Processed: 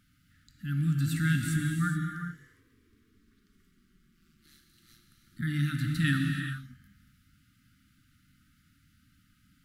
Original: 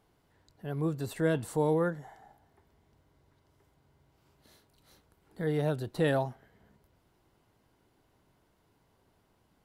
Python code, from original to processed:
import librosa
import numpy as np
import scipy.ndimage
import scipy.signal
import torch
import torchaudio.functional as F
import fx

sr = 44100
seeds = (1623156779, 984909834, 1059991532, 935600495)

y = fx.brickwall_bandstop(x, sr, low_hz=300.0, high_hz=1200.0)
y = fx.ring_mod(y, sr, carrier_hz=fx.line((2.17, 230.0), (5.41, 46.0)), at=(2.17, 5.41), fade=0.02)
y = fx.rev_gated(y, sr, seeds[0], gate_ms=450, shape='flat', drr_db=2.0)
y = y * librosa.db_to_amplitude(4.5)